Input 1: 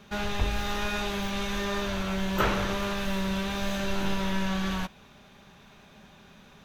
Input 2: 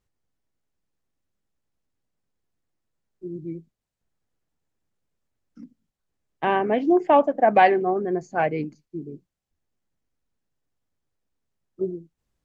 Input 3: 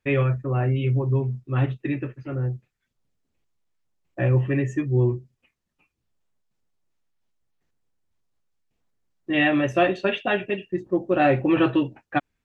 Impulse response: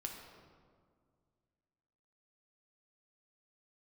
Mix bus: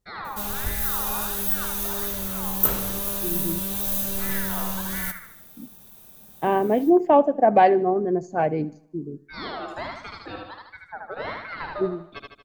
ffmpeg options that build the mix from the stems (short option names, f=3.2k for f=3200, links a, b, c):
-filter_complex "[0:a]aemphasis=mode=production:type=75fm,aexciter=amount=2.8:drive=6.8:freq=8.2k,adelay=250,volume=-2dB,asplit=2[a][b];[b]volume=-14.5dB[c];[1:a]volume=2.5dB,asplit=2[d][e];[e]volume=-21.5dB[f];[2:a]aeval=exprs='val(0)*sin(2*PI*1400*n/s+1400*0.35/1.4*sin(2*PI*1.4*n/s))':c=same,volume=-8dB,asplit=2[g][h];[h]volume=-3dB[i];[c][f][i]amix=inputs=3:normalize=0,aecho=0:1:77|154|231|308|385|462|539:1|0.47|0.221|0.104|0.0488|0.0229|0.0108[j];[a][d][g][j]amix=inputs=4:normalize=0,equalizer=f=2.2k:w=0.7:g=-9.5"